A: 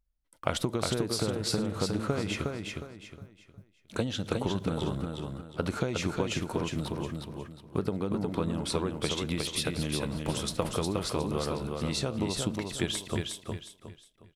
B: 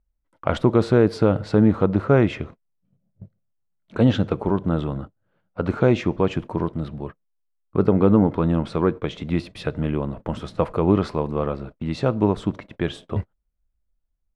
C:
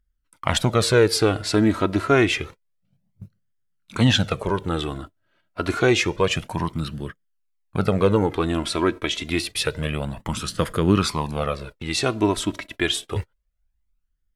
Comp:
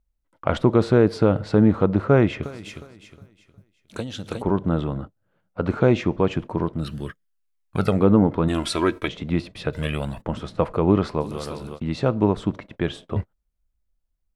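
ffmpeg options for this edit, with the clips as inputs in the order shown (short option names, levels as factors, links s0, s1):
-filter_complex "[0:a]asplit=2[s0][s1];[2:a]asplit=3[s2][s3][s4];[1:a]asplit=6[s5][s6][s7][s8][s9][s10];[s5]atrim=end=2.432[s11];[s0]atrim=start=2.428:end=4.422[s12];[s6]atrim=start=4.418:end=6.92[s13];[s2]atrim=start=6.76:end=8.06[s14];[s7]atrim=start=7.9:end=8.482[s15];[s3]atrim=start=8.478:end=9.082[s16];[s8]atrim=start=9.078:end=9.732[s17];[s4]atrim=start=9.728:end=10.222[s18];[s9]atrim=start=10.218:end=11.26[s19];[s1]atrim=start=11.2:end=11.8[s20];[s10]atrim=start=11.74[s21];[s11][s12]acrossfade=d=0.004:c1=hsin:c2=hsin[s22];[s22][s13]acrossfade=d=0.004:c1=hsin:c2=hsin[s23];[s23][s14]acrossfade=d=0.16:c1=tri:c2=tri[s24];[s24][s15]acrossfade=d=0.16:c1=tri:c2=tri[s25];[s25][s16]acrossfade=d=0.004:c1=hsin:c2=hsin[s26];[s26][s17]acrossfade=d=0.004:c1=hsin:c2=hsin[s27];[s27][s18]acrossfade=d=0.004:c1=hsin:c2=hsin[s28];[s28][s19]acrossfade=d=0.004:c1=hsin:c2=hsin[s29];[s29][s20]acrossfade=d=0.06:c1=tri:c2=tri[s30];[s30][s21]acrossfade=d=0.06:c1=tri:c2=tri"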